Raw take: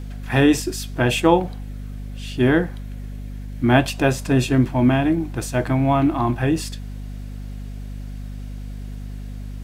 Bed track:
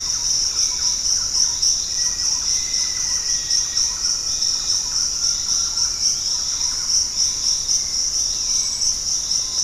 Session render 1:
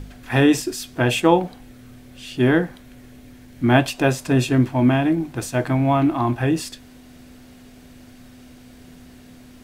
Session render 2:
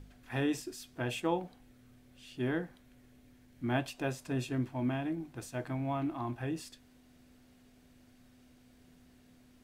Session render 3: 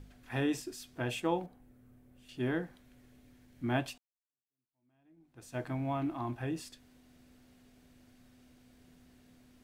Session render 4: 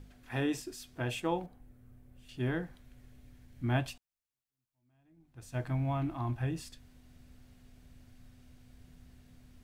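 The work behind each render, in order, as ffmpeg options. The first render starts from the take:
ffmpeg -i in.wav -af "bandreject=frequency=50:width_type=h:width=4,bandreject=frequency=100:width_type=h:width=4,bandreject=frequency=150:width_type=h:width=4,bandreject=frequency=200:width_type=h:width=4" out.wav
ffmpeg -i in.wav -af "volume=-16.5dB" out.wav
ffmpeg -i in.wav -filter_complex "[0:a]asettb=1/sr,asplit=3[link_01][link_02][link_03];[link_01]atrim=end=1.464[link_04];[link_02]atrim=start=1.46:end=2.29,asetpts=PTS-STARTPTS,afade=type=in:duration=0.004:curve=qsin,afade=type=out:start_time=0.826:duration=0.004:curve=qsin,equalizer=frequency=4300:width=0.48:gain=-13.5[link_05];[link_03]atrim=start=2.286[link_06];[link_04][link_05]acrossfade=duration=0.004:curve1=hsin:curve2=qsin[link_07];[link_07][link_06]acrossfade=duration=0.004:curve1=qsin:curve2=hsin,asplit=2[link_08][link_09];[link_08]atrim=end=3.98,asetpts=PTS-STARTPTS,afade=type=out:start_time=3.976:duration=0.004:curve=hsin[link_10];[link_09]atrim=start=3.98,asetpts=PTS-STARTPTS,afade=type=in:duration=1.58:curve=exp[link_11];[link_10][link_11]concat=n=2:v=0:a=1" out.wav
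ffmpeg -i in.wav -af "asubboost=boost=4:cutoff=140" out.wav

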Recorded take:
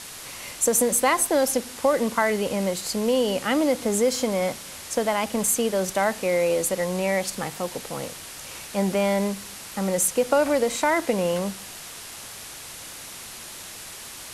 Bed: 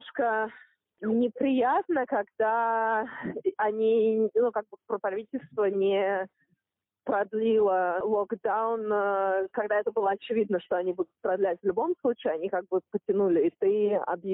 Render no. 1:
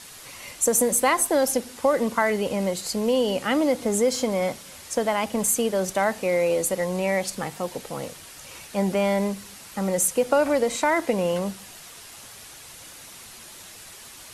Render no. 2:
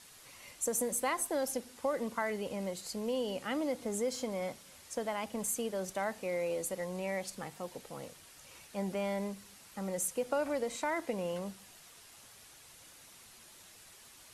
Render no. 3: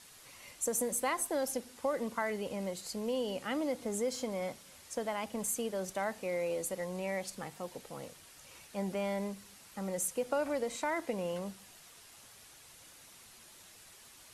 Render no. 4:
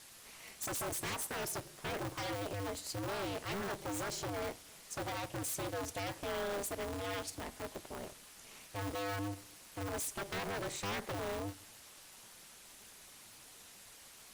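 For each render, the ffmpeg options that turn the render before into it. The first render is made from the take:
ffmpeg -i in.wav -af "afftdn=noise_reduction=6:noise_floor=-40" out.wav
ffmpeg -i in.wav -af "volume=-12.5dB" out.wav
ffmpeg -i in.wav -af anull out.wav
ffmpeg -i in.wav -af "aeval=exprs='0.0211*(abs(mod(val(0)/0.0211+3,4)-2)-1)':channel_layout=same,aeval=exprs='val(0)*sgn(sin(2*PI*100*n/s))':channel_layout=same" out.wav

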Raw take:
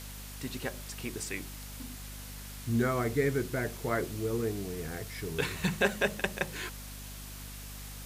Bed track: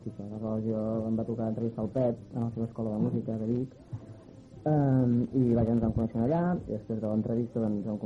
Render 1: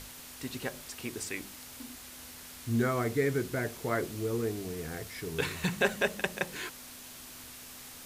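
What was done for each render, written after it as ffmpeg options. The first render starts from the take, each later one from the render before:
ffmpeg -i in.wav -af "bandreject=frequency=50:width_type=h:width=6,bandreject=frequency=100:width_type=h:width=6,bandreject=frequency=150:width_type=h:width=6,bandreject=frequency=200:width_type=h:width=6" out.wav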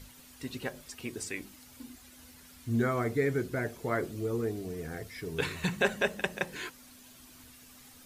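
ffmpeg -i in.wav -af "afftdn=noise_reduction=10:noise_floor=-48" out.wav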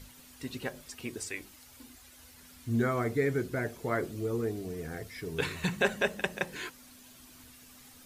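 ffmpeg -i in.wav -filter_complex "[0:a]asettb=1/sr,asplit=3[link_01][link_02][link_03];[link_01]atrim=end=1.174[link_04];[link_02]atrim=start=1.17:end=2.38,asetpts=PTS-STARTPTS,afade=type=in:duration=0.004:curve=qsin,afade=type=out:start_time=1.206:duration=0.004:curve=qsin,equalizer=frequency=210:width=1.3:gain=-8.5[link_05];[link_03]atrim=start=2.376[link_06];[link_04][link_05]acrossfade=duration=0.004:curve1=hsin:curve2=qsin[link_07];[link_07][link_06]acrossfade=duration=0.004:curve1=qsin:curve2=hsin" out.wav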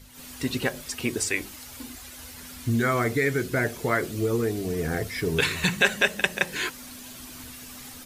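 ffmpeg -i in.wav -filter_complex "[0:a]acrossover=split=1500[link_01][link_02];[link_01]alimiter=level_in=5dB:limit=-24dB:level=0:latency=1:release=424,volume=-5dB[link_03];[link_03][link_02]amix=inputs=2:normalize=0,dynaudnorm=framelen=110:gausssize=3:maxgain=12dB" out.wav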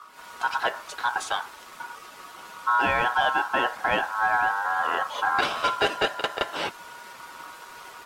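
ffmpeg -i in.wav -filter_complex "[0:a]aeval=exprs='val(0)*sin(2*PI*1200*n/s)':channel_layout=same,asplit=2[link_01][link_02];[link_02]highpass=frequency=720:poles=1,volume=16dB,asoftclip=type=tanh:threshold=-5dB[link_03];[link_01][link_03]amix=inputs=2:normalize=0,lowpass=frequency=1000:poles=1,volume=-6dB" out.wav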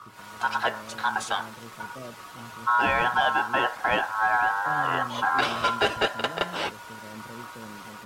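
ffmpeg -i in.wav -i bed.wav -filter_complex "[1:a]volume=-14.5dB[link_01];[0:a][link_01]amix=inputs=2:normalize=0" out.wav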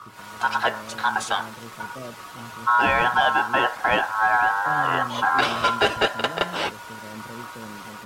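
ffmpeg -i in.wav -af "volume=3.5dB" out.wav

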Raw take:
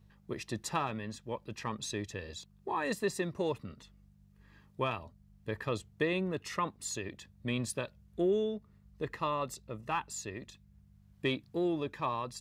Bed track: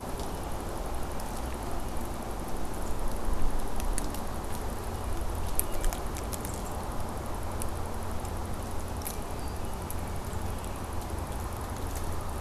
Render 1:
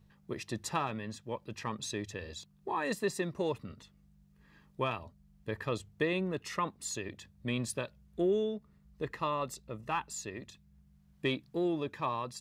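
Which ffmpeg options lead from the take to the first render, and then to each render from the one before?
ffmpeg -i in.wav -af "bandreject=frequency=50:width_type=h:width=4,bandreject=frequency=100:width_type=h:width=4" out.wav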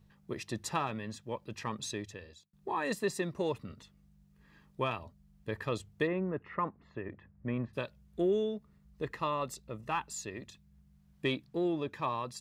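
ffmpeg -i in.wav -filter_complex "[0:a]asplit=3[link_01][link_02][link_03];[link_01]afade=type=out:start_time=6.06:duration=0.02[link_04];[link_02]lowpass=frequency=1900:width=0.5412,lowpass=frequency=1900:width=1.3066,afade=type=in:start_time=6.06:duration=0.02,afade=type=out:start_time=7.73:duration=0.02[link_05];[link_03]afade=type=in:start_time=7.73:duration=0.02[link_06];[link_04][link_05][link_06]amix=inputs=3:normalize=0,asettb=1/sr,asplit=3[link_07][link_08][link_09];[link_07]atrim=end=11.464[link_10];[link_08]atrim=start=11.46:end=11.93,asetpts=PTS-STARTPTS,afade=type=in:duration=0.004:curve=qsin,afade=type=out:start_time=0.466:duration=0.004:curve=qsin,highshelf=frequency=7600:gain=-6.5[link_11];[link_09]atrim=start=11.926[link_12];[link_10][link_11]acrossfade=duration=0.004:curve1=hsin:curve2=qsin[link_13];[link_13][link_12]acrossfade=duration=0.004:curve1=qsin:curve2=hsin,asplit=2[link_14][link_15];[link_14]atrim=end=2.53,asetpts=PTS-STARTPTS,afade=type=out:start_time=1.87:duration=0.66[link_16];[link_15]atrim=start=2.53,asetpts=PTS-STARTPTS,afade=type=in:duration=0.004:curve=hsin[link_17];[link_16][link_17]concat=n=2:v=0:a=1" out.wav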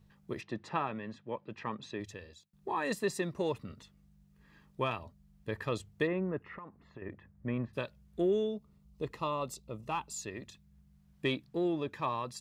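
ffmpeg -i in.wav -filter_complex "[0:a]asplit=3[link_01][link_02][link_03];[link_01]afade=type=out:start_time=0.4:duration=0.02[link_04];[link_02]highpass=140,lowpass=2600,afade=type=in:start_time=0.4:duration=0.02,afade=type=out:start_time=1.99:duration=0.02[link_05];[link_03]afade=type=in:start_time=1.99:duration=0.02[link_06];[link_04][link_05][link_06]amix=inputs=3:normalize=0,asettb=1/sr,asplit=3[link_07][link_08][link_09];[link_07]atrim=end=6.484[link_10];[link_08]atrim=start=6.48:end=7.02,asetpts=PTS-STARTPTS,afade=type=in:duration=0.004:curve=qsin,afade=type=out:start_time=0.536:duration=0.004:curve=qsin,acompressor=threshold=-42dB:ratio=20:attack=3.2:release=140:knee=1:detection=peak[link_11];[link_09]atrim=start=7.016[link_12];[link_10][link_11]acrossfade=duration=0.004:curve1=hsin:curve2=qsin[link_13];[link_13][link_12]acrossfade=duration=0.004:curve1=qsin:curve2=hsin,asettb=1/sr,asplit=3[link_14][link_15][link_16];[link_14]atrim=end=8.474[link_17];[link_15]atrim=start=8.47:end=10.22,asetpts=PTS-STARTPTS,afade=type=in:duration=0.004:curve=qsin,afade=type=out:start_time=1.746:duration=0.004:curve=qsin,equalizer=frequency=1700:width=2.7:gain=-11.5[link_18];[link_16]atrim=start=10.216[link_19];[link_17][link_18]acrossfade=duration=0.004:curve1=hsin:curve2=qsin[link_20];[link_20][link_19]acrossfade=duration=0.004:curve1=qsin:curve2=hsin" out.wav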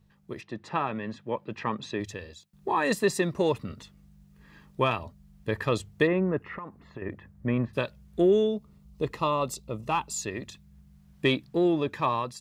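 ffmpeg -i in.wav -af "dynaudnorm=framelen=530:gausssize=3:maxgain=8dB" out.wav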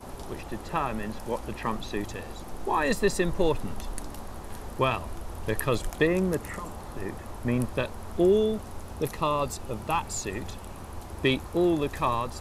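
ffmpeg -i in.wav -i bed.wav -filter_complex "[1:a]volume=-5dB[link_01];[0:a][link_01]amix=inputs=2:normalize=0" out.wav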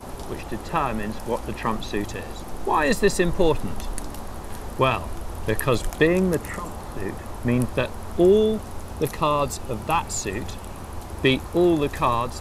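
ffmpeg -i in.wav -af "volume=5dB,alimiter=limit=-3dB:level=0:latency=1" out.wav

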